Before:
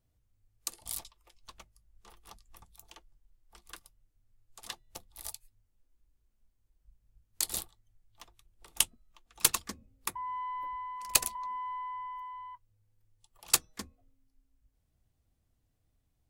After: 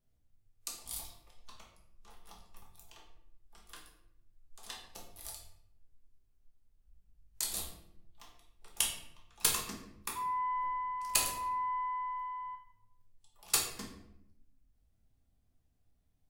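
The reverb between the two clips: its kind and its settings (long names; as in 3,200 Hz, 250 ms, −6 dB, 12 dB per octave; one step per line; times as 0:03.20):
rectangular room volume 190 cubic metres, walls mixed, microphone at 1.3 metres
level −6 dB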